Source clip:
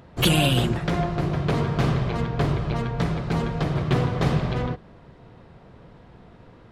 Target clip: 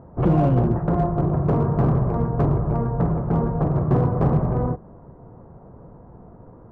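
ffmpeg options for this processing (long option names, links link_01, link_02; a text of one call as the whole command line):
ffmpeg -i in.wav -filter_complex "[0:a]lowpass=frequency=1100:width=0.5412,lowpass=frequency=1100:width=1.3066,asplit=2[link_01][link_02];[link_02]aeval=exprs='0.133*(abs(mod(val(0)/0.133+3,4)-2)-1)':channel_layout=same,volume=-8dB[link_03];[link_01][link_03]amix=inputs=2:normalize=0,volume=1dB" out.wav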